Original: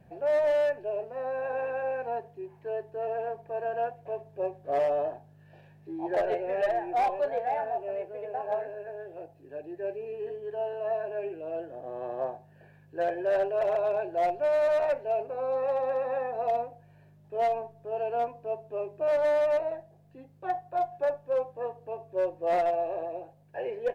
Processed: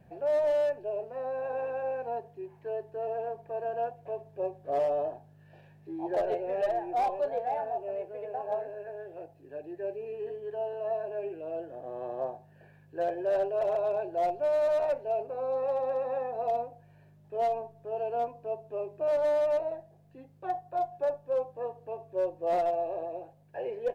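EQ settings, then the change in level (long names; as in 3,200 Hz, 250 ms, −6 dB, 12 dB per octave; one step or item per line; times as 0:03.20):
dynamic equaliser 1,900 Hz, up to −7 dB, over −48 dBFS, Q 1.2
−1.0 dB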